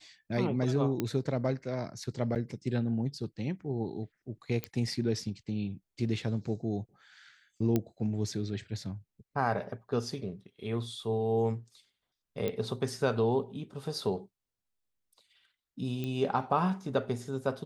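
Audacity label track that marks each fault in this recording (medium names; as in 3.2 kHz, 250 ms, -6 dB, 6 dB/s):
1.000000	1.000000	pop -17 dBFS
2.350000	2.360000	dropout 8 ms
4.640000	4.640000	pop -18 dBFS
7.760000	7.760000	pop -15 dBFS
12.480000	12.480000	pop -20 dBFS
16.040000	16.040000	pop -23 dBFS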